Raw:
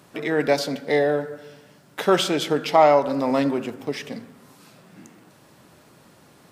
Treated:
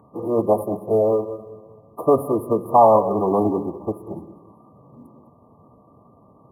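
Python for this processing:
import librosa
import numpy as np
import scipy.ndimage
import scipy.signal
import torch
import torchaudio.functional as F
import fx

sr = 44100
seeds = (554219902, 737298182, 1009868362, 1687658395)

p1 = fx.wiener(x, sr, points=9)
p2 = fx.brickwall_bandstop(p1, sr, low_hz=1600.0, high_hz=9500.0)
p3 = p2 + 10.0 ** (-16.5 / 20.0) * np.pad(p2, (int(202 * sr / 1000.0), 0))[:len(p2)]
p4 = fx.pitch_keep_formants(p3, sr, semitones=-5.0)
p5 = fx.quant_float(p4, sr, bits=6)
p6 = fx.peak_eq(p5, sr, hz=4500.0, db=-3.0, octaves=0.66)
p7 = p6 + fx.echo_feedback(p6, sr, ms=195, feedback_pct=60, wet_db=-23.5, dry=0)
y = F.gain(torch.from_numpy(p7), 2.5).numpy()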